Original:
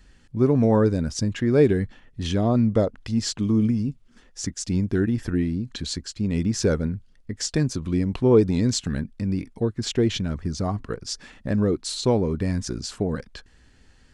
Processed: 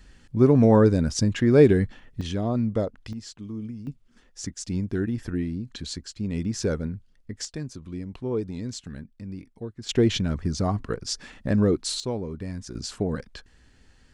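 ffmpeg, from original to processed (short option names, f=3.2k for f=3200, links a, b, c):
-af "asetnsamples=n=441:p=0,asendcmd='2.21 volume volume -5dB;3.13 volume volume -14dB;3.87 volume volume -4.5dB;7.45 volume volume -11.5dB;9.89 volume volume 1dB;12 volume volume -9dB;12.75 volume volume -1.5dB',volume=2dB"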